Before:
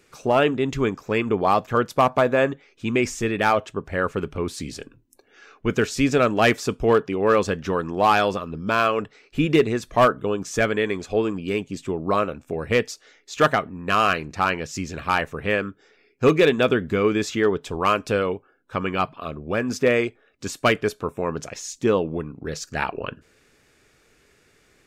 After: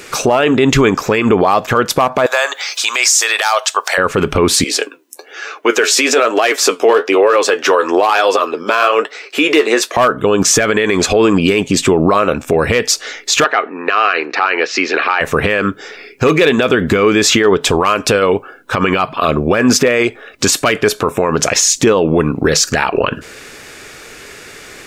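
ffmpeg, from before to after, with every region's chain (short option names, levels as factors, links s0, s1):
-filter_complex "[0:a]asettb=1/sr,asplit=3[s0][s1][s2];[s0]atrim=end=2.264[s3];[s1]atrim=start=2.26:end=3.98,asetpts=PTS-STARTPTS,afade=t=in:d=0.004:c=qsin,afade=t=out:st=1.716:d=0.004:c=qsin,highpass=f=720:w=0.5412,highpass=f=720:w=1.3066,highshelf=f=3400:t=q:w=1.5:g=8,acompressor=mode=upward:threshold=0.0126:ratio=2.5:attack=3.2:release=140:knee=2.83:detection=peak[s4];[s2]atrim=start=3.976[s5];[s3][s4]acrossfade=d=0.004:c1=hsin:c2=qsin[s6];[s6][s5]acrossfade=d=0.004:c1=qsin:c2=hsin,asettb=1/sr,asplit=3[s7][s8][s9];[s7]atrim=end=4.644[s10];[s8]atrim=start=4.64:end=9.97,asetpts=PTS-STARTPTS,afade=t=in:d=0.004:c=qsin,afade=t=out:st=5.326:d=0.004:c=qsin,highpass=f=340:w=0.5412,highpass=f=340:w=1.3066,flanger=delay=5.5:depth=8.6:regen=47:speed=1.1:shape=triangular[s11];[s9]atrim=start=9.966[s12];[s10][s11]acrossfade=d=0.004:c1=hsin:c2=qsin[s13];[s13][s12]acrossfade=d=0.004:c1=qsin:c2=hsin,asettb=1/sr,asplit=3[s14][s15][s16];[s14]atrim=end=13.444[s17];[s15]atrim=start=13.44:end=15.21,asetpts=PTS-STARTPTS,afade=t=in:d=0.004:c=qsin,afade=t=out:st=1.766:d=0.004:c=qsin,deesser=0.35,highpass=f=360:w=0.5412,highpass=f=360:w=1.3066,equalizer=f=590:t=q:w=4:g=-7,equalizer=f=1000:t=q:w=4:g=-5,equalizer=f=3300:t=q:w=4:g=-7,lowpass=f=4000:w=0.5412,lowpass=f=4000:w=1.3066[s18];[s16]atrim=start=15.206[s19];[s17][s18]acrossfade=d=0.004:c1=hsin:c2=qsin[s20];[s20][s19]acrossfade=d=0.004:c1=qsin:c2=hsin,lowshelf=f=290:g=-9.5,acompressor=threshold=0.0398:ratio=4,alimiter=level_in=23.7:limit=0.891:release=50:level=0:latency=1,volume=0.891"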